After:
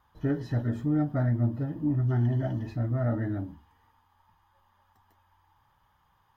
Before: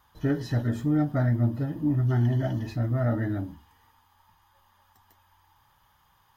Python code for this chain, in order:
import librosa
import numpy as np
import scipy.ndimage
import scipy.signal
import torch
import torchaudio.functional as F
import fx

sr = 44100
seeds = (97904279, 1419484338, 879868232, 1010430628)

y = fx.high_shelf(x, sr, hz=2900.0, db=-10.5)
y = y * librosa.db_to_amplitude(-2.0)